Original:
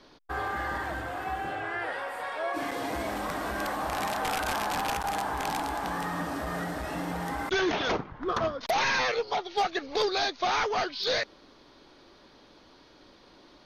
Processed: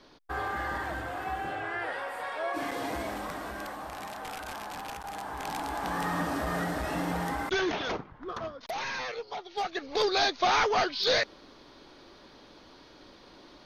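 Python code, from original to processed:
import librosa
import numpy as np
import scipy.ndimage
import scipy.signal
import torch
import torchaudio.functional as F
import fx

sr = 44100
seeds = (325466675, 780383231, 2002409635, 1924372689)

y = fx.gain(x, sr, db=fx.line((2.88, -1.0), (3.97, -9.5), (5.03, -9.5), (6.1, 2.0), (7.18, 2.0), (8.33, -8.5), (9.36, -8.5), (10.21, 2.5)))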